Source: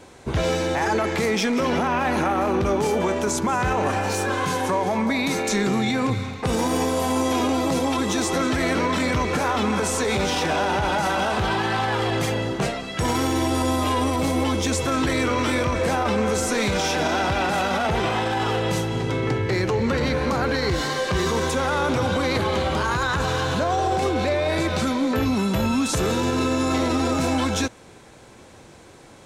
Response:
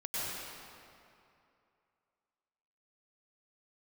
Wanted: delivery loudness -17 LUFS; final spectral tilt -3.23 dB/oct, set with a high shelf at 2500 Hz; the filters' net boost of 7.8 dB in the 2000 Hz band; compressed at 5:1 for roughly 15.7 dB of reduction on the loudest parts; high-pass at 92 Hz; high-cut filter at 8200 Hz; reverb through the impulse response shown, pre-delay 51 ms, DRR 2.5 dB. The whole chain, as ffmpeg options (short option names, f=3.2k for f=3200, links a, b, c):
-filter_complex "[0:a]highpass=92,lowpass=8.2k,equalizer=f=2k:t=o:g=6,highshelf=f=2.5k:g=8.5,acompressor=threshold=-34dB:ratio=5,asplit=2[a][b];[1:a]atrim=start_sample=2205,adelay=51[c];[b][c]afir=irnorm=-1:irlink=0,volume=-7.5dB[d];[a][d]amix=inputs=2:normalize=0,volume=15dB"